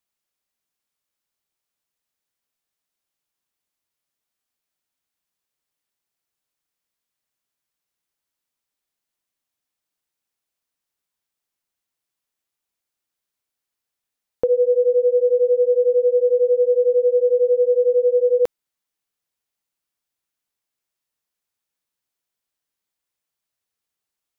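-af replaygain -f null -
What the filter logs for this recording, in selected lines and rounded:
track_gain = +0.6 dB
track_peak = 0.210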